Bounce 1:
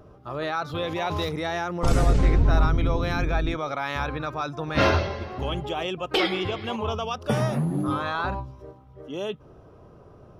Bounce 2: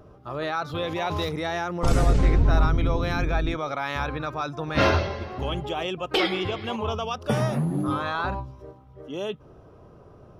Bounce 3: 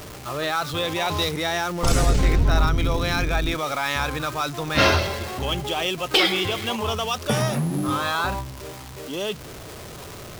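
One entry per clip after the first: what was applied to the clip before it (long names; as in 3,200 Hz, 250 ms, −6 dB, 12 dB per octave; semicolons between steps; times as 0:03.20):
no processing that can be heard
converter with a step at zero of −36.5 dBFS; high-shelf EQ 2,300 Hz +11 dB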